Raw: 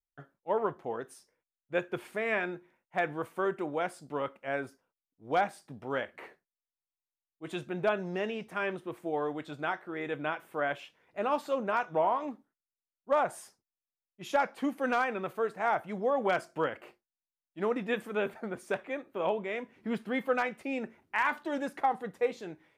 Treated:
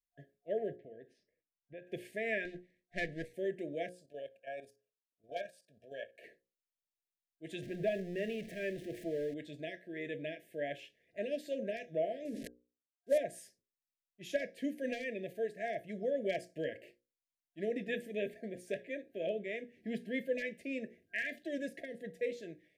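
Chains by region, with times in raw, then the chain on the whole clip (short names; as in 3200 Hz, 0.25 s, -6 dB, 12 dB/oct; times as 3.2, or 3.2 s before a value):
0.76–1.87 compressor 2:1, threshold -48 dBFS + air absorption 280 m
2.45–3.34 minimum comb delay 0.49 ms + LPF 9500 Hz
3.89–6.24 resonant low shelf 420 Hz -9 dB, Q 1.5 + level quantiser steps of 12 dB + Butterworth band-stop 2000 Hz, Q 5
7.62–9.34 zero-crossing step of -39 dBFS + high shelf 3600 Hz -8.5 dB
12.25–13.18 CVSD 64 kbps + bell 440 Hz +7.5 dB 0.62 oct + sustainer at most 34 dB/s
whole clip: notches 60/120/180/240/300/360/420/480/540 Hz; FFT band-reject 700–1600 Hz; gain -4.5 dB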